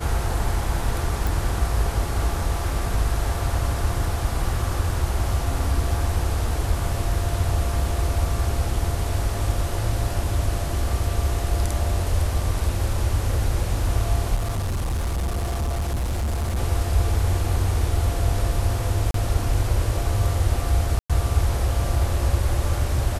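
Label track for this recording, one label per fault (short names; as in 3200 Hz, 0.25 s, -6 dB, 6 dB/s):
1.270000	1.270000	pop
14.350000	16.580000	clipped -21 dBFS
19.110000	19.140000	gap 33 ms
20.990000	21.100000	gap 0.106 s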